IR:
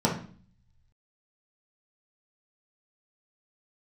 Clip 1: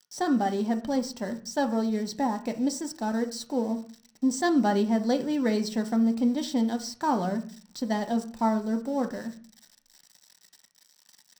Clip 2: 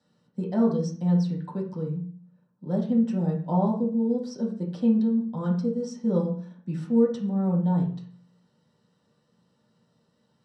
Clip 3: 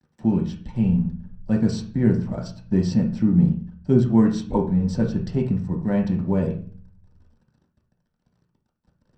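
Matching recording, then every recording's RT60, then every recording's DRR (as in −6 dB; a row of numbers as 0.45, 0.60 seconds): 2; 0.45, 0.45, 0.45 seconds; 6.0, −4.0, 0.0 decibels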